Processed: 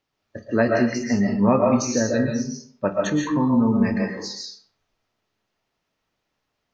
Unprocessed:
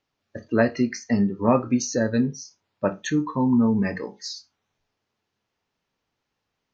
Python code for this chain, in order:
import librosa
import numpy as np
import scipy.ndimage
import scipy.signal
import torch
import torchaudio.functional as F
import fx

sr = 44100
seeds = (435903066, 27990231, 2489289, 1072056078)

y = fx.rev_freeverb(x, sr, rt60_s=0.54, hf_ratio=0.7, predelay_ms=95, drr_db=0.0)